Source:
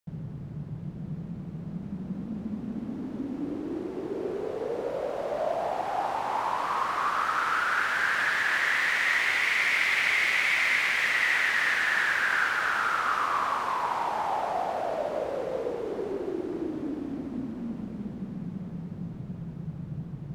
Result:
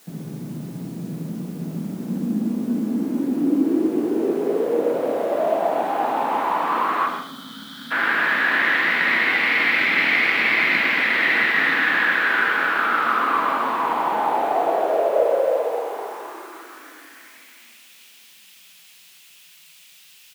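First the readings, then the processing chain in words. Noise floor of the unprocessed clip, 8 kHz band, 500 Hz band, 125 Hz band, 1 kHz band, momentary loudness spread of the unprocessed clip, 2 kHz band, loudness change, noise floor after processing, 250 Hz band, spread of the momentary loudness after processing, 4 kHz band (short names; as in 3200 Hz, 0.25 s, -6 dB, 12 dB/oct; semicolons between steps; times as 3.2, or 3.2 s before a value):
-40 dBFS, n/a, +9.5 dB, +2.0 dB, +6.5 dB, 15 LU, +6.0 dB, +7.5 dB, -49 dBFS, +9.5 dB, 16 LU, +5.0 dB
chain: tracing distortion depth 0.043 ms; LPF 3900 Hz 24 dB/oct; in parallel at -4.5 dB: requantised 8-bit, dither triangular; on the sum: spectral gain 7.07–7.91, 300–3000 Hz -25 dB; on a send: echo 0.129 s -8.5 dB; on the sum: shoebox room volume 200 m³, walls mixed, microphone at 0.71 m; high-pass sweep 250 Hz -> 2800 Hz, 14.2–17.9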